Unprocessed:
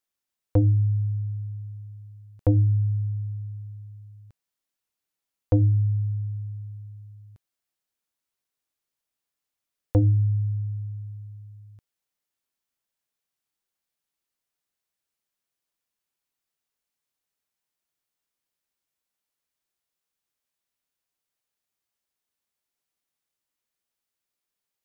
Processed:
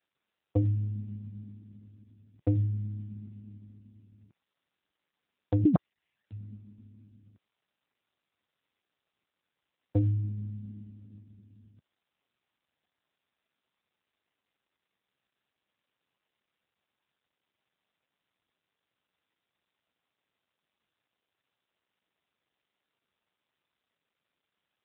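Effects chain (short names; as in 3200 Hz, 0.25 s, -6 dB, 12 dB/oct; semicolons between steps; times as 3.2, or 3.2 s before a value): 5.64–6.31 sine-wave speech; gain -5 dB; AMR-NB 7.4 kbps 8000 Hz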